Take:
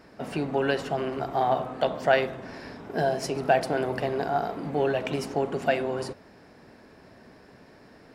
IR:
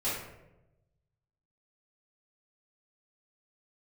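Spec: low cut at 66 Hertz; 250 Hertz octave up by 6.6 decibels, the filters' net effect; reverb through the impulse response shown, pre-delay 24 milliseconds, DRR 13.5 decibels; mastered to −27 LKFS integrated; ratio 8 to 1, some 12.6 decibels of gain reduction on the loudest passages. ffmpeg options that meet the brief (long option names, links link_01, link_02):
-filter_complex "[0:a]highpass=66,equalizer=frequency=250:width_type=o:gain=8,acompressor=threshold=-28dB:ratio=8,asplit=2[link_01][link_02];[1:a]atrim=start_sample=2205,adelay=24[link_03];[link_02][link_03]afir=irnorm=-1:irlink=0,volume=-20.5dB[link_04];[link_01][link_04]amix=inputs=2:normalize=0,volume=6dB"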